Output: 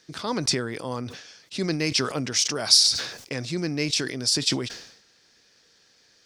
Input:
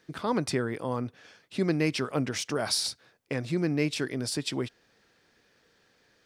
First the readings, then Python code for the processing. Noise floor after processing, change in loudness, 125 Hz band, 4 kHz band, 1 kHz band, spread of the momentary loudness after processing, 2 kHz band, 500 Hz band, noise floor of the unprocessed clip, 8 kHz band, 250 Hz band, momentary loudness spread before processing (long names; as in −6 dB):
−61 dBFS, +7.0 dB, +0.5 dB, +12.0 dB, +1.0 dB, 18 LU, +3.5 dB, 0.0 dB, −67 dBFS, +11.0 dB, 0.0 dB, 9 LU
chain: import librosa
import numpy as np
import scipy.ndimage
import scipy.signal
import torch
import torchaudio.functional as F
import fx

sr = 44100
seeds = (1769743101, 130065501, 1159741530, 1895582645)

y = fx.peak_eq(x, sr, hz=5500.0, db=14.5, octaves=1.5)
y = fx.sustainer(y, sr, db_per_s=77.0)
y = y * 10.0 ** (-1.0 / 20.0)